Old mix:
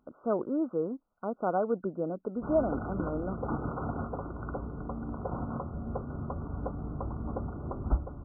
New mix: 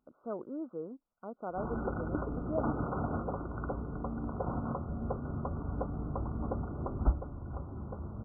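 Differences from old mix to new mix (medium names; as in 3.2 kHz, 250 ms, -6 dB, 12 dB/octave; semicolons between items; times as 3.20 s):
speech -9.5 dB; background: entry -0.85 s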